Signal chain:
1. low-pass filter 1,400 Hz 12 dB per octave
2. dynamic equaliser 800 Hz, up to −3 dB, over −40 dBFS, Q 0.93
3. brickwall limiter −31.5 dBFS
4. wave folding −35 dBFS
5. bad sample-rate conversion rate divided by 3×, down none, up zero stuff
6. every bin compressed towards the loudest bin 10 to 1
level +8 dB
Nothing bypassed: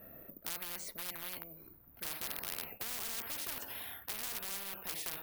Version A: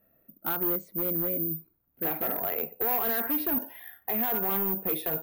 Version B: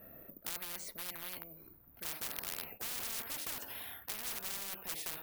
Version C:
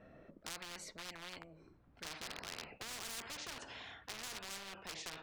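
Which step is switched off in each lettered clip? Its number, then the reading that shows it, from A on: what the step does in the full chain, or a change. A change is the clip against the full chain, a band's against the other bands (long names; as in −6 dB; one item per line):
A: 6, 8 kHz band −22.5 dB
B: 3, average gain reduction 2.0 dB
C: 5, 8 kHz band −4.0 dB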